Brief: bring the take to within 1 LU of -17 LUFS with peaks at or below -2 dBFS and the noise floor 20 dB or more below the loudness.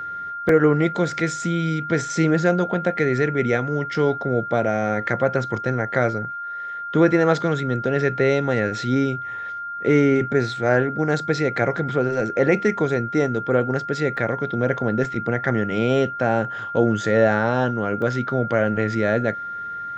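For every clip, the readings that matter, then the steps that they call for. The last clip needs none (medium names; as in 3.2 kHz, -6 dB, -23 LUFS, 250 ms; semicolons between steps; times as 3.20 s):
dropouts 3; longest dropout 2.4 ms; steady tone 1.4 kHz; tone level -28 dBFS; loudness -21.5 LUFS; peak level -4.5 dBFS; loudness target -17.0 LUFS
-> interpolate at 0.49/14.17/18.02 s, 2.4 ms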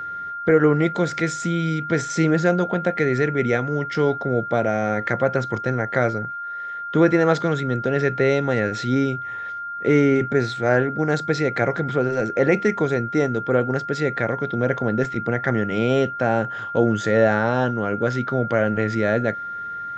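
dropouts 0; steady tone 1.4 kHz; tone level -28 dBFS
-> band-stop 1.4 kHz, Q 30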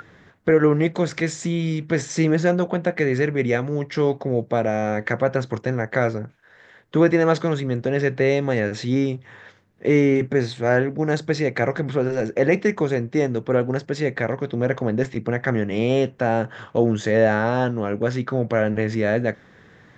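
steady tone not found; loudness -22.0 LUFS; peak level -4.5 dBFS; loudness target -17.0 LUFS
-> trim +5 dB; peak limiter -2 dBFS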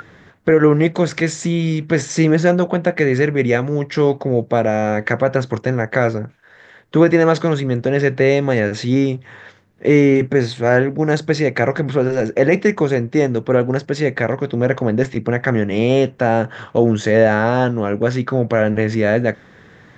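loudness -17.0 LUFS; peak level -2.0 dBFS; noise floor -47 dBFS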